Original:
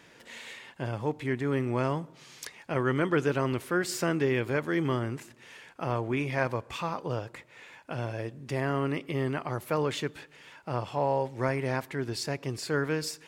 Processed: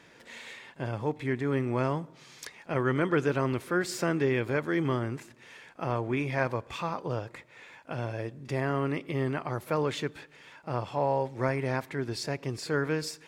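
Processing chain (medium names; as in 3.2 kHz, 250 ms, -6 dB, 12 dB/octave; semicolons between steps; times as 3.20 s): treble shelf 7.8 kHz -5.5 dB; band-stop 2.9 kHz, Q 19; reverse echo 38 ms -22 dB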